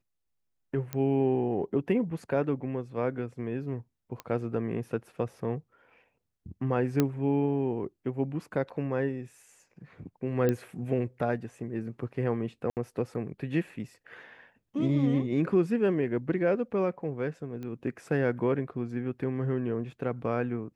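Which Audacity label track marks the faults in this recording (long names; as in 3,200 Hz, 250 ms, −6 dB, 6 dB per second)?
0.930000	0.930000	click −18 dBFS
4.200000	4.200000	click −23 dBFS
7.000000	7.000000	click −11 dBFS
10.490000	10.490000	click −15 dBFS
12.700000	12.770000	drop-out 68 ms
17.630000	17.630000	click −28 dBFS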